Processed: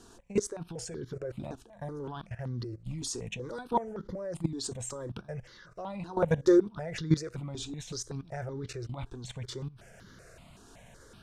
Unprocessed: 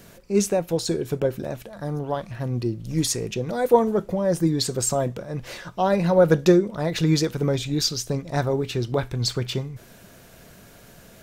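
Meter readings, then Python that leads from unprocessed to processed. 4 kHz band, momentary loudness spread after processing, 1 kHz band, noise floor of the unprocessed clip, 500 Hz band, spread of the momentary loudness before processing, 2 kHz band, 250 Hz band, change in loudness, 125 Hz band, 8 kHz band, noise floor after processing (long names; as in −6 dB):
−14.0 dB, 14 LU, −10.5 dB, −49 dBFS, −11.0 dB, 12 LU, −10.5 dB, −9.0 dB, −10.5 dB, −10.5 dB, −11.5 dB, −56 dBFS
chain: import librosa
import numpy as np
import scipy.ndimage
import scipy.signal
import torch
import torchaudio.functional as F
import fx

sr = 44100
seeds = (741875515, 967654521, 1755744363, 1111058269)

y = scipy.signal.sosfilt(scipy.signal.butter(4, 9000.0, 'lowpass', fs=sr, output='sos'), x)
y = fx.level_steps(y, sr, step_db=17)
y = fx.phaser_held(y, sr, hz=5.3, low_hz=570.0, high_hz=2500.0)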